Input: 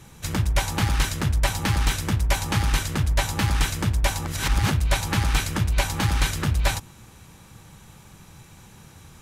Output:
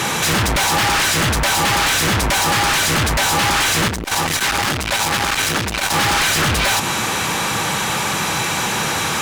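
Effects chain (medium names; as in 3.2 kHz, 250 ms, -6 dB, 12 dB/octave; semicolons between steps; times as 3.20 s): bass shelf 64 Hz -11 dB; compression, threshold -28 dBFS, peak gain reduction 9.5 dB; overdrive pedal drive 36 dB, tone 4.1 kHz, clips at -12 dBFS; hard clipper -22.5 dBFS, distortion -12 dB; 3.88–5.94 s: transformer saturation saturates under 230 Hz; trim +7.5 dB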